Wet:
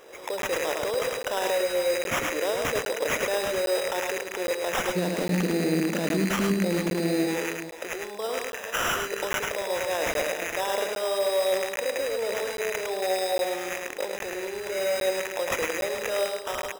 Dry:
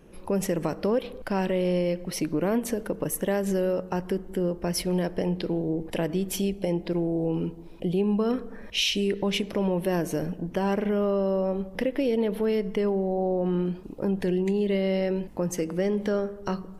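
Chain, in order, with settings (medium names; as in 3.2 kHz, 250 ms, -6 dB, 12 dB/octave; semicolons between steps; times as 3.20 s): rattle on loud lows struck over -41 dBFS, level -30 dBFS; compressor with a negative ratio -29 dBFS, ratio -1; Chebyshev high-pass 490 Hz, order 3, from 4.95 s 190 Hz, from 7.25 s 540 Hz; sample-rate reducer 4.4 kHz, jitter 0%; peak limiter -26.5 dBFS, peak gain reduction 10.5 dB; multi-tap echo 106/436 ms -4/-11.5 dB; crackling interface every 0.81 s, samples 512, zero, from 0.42 s; trim +7.5 dB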